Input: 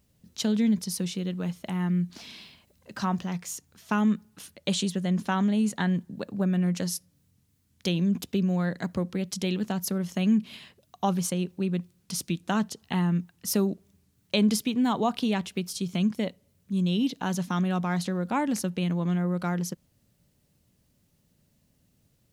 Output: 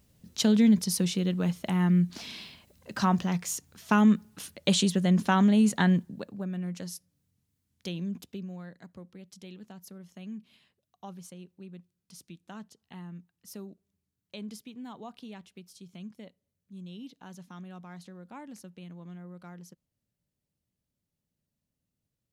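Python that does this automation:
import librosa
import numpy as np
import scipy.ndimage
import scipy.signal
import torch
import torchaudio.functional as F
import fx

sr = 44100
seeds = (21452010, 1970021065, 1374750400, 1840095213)

y = fx.gain(x, sr, db=fx.line((5.92, 3.0), (6.42, -9.0), (8.07, -9.0), (8.77, -18.0)))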